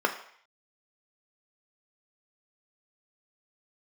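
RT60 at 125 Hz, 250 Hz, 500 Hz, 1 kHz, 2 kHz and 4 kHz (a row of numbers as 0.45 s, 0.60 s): 0.35 s, 0.40 s, 0.55 s, 0.60 s, 0.70 s, 0.60 s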